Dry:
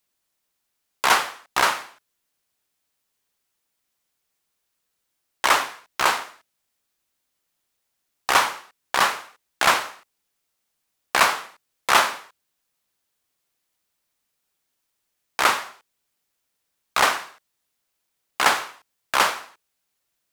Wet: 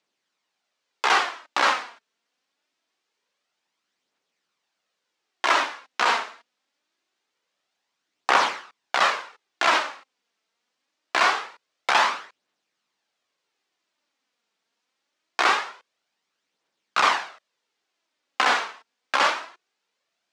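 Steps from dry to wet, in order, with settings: median filter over 3 samples; HPF 110 Hz; three-band isolator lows -17 dB, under 180 Hz, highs -24 dB, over 6900 Hz; limiter -11.5 dBFS, peak gain reduction 9.5 dB; phaser 0.24 Hz, delay 4.6 ms, feedback 36%; gain +2.5 dB

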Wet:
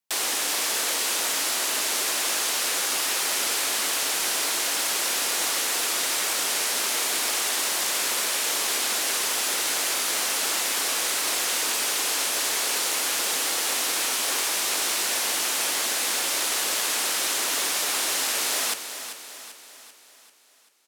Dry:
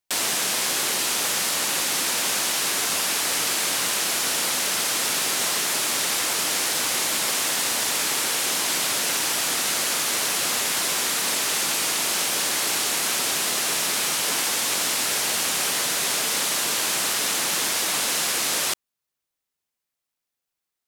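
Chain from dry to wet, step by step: feedback echo 0.39 s, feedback 51%, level -10.5 dB; frequency shift +100 Hz; short-mantissa float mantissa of 2-bit; gain -2 dB

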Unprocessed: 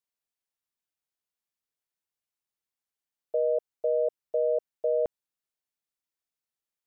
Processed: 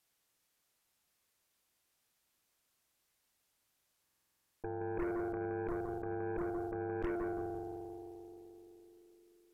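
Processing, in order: octaver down 1 oct, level -6 dB; spring tank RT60 3.3 s, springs 31 ms, chirp 80 ms, DRR 17 dB; varispeed -28%; negative-ratio compressor -39 dBFS, ratio -1; darkening echo 0.17 s, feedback 48%, low-pass 830 Hz, level -10 dB; added harmonics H 8 -15 dB, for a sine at -27 dBFS; stuck buffer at 4.02, samples 2048, times 10

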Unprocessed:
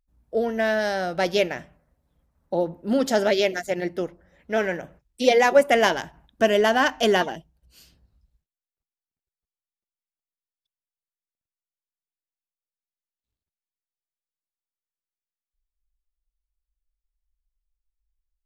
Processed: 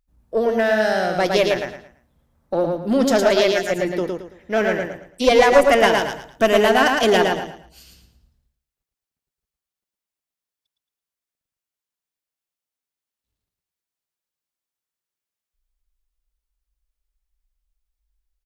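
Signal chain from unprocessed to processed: one diode to ground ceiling -13.5 dBFS; 5.9–6.97 high shelf 8700 Hz +5.5 dB; on a send: feedback echo 0.111 s, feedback 30%, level -3.5 dB; on the sum: gain +4.5 dB

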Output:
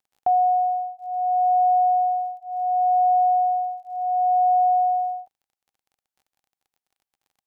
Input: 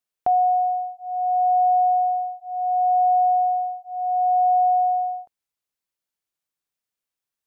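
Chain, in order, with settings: crackle 34/s -45 dBFS; bell 790 Hz +10 dB 0.27 oct; gain -6 dB

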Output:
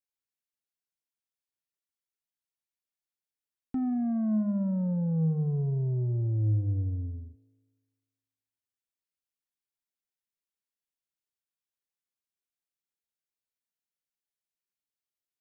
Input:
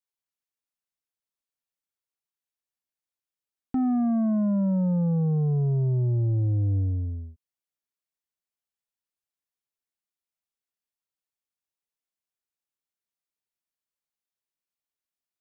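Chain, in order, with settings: bell 760 Hz -4.5 dB 1 oct; notch 1200 Hz, Q 7.6; resonator 54 Hz, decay 1.5 s, harmonics all, mix 60%; gain +2.5 dB

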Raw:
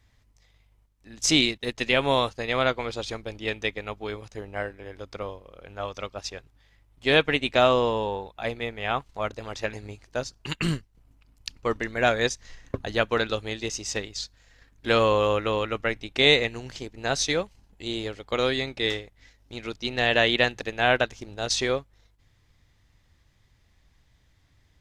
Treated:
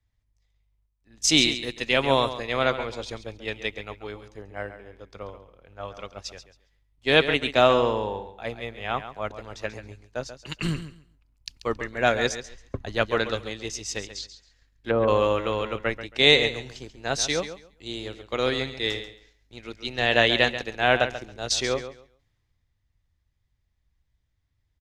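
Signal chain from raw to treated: 13.99–15.08 treble ducked by the level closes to 820 Hz, closed at -19 dBFS; feedback echo 0.137 s, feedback 25%, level -10.5 dB; three-band expander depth 40%; gain -1 dB

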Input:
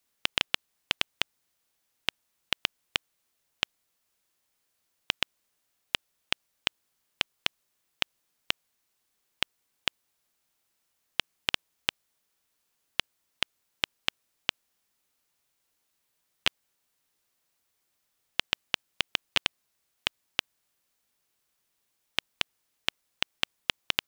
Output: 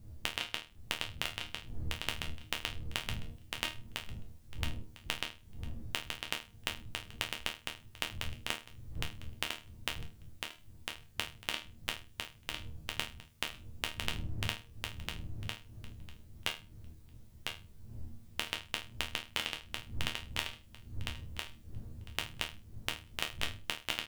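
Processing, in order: wind noise 84 Hz -45 dBFS; compressor, threshold -34 dBFS, peak gain reduction 14.5 dB; resonator bank D#2 sus4, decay 0.31 s; on a send: feedback echo 1.002 s, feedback 16%, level -4 dB; on the sum: gain +14.5 dB

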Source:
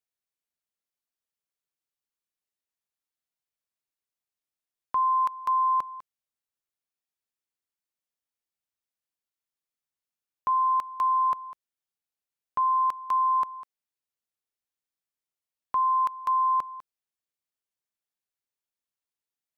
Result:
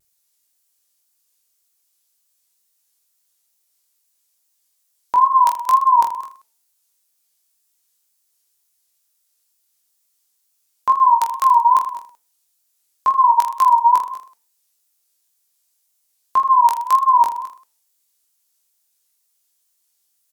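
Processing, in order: tone controls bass -8 dB, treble +15 dB; de-hum 244.5 Hz, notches 15; wide varispeed 0.963×; wow and flutter 130 cents; reverse bouncing-ball echo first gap 20 ms, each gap 1.3×, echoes 5; gain +9 dB

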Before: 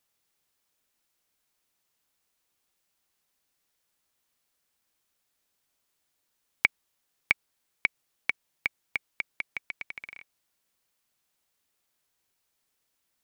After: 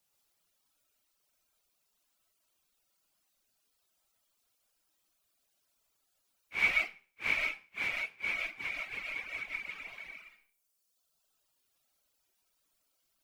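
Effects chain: phase scrambler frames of 0.2 s; reverb RT60 0.40 s, pre-delay 80 ms, DRR -1 dB; reverb removal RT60 1.4 s; bell 1900 Hz -5.5 dB 0.3 oct

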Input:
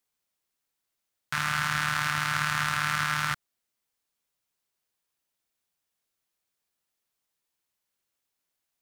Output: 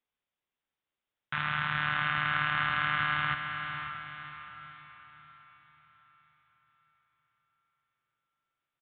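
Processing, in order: downsampling 8000 Hz; diffused feedback echo 0.551 s, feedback 46%, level -7 dB; gain -3 dB

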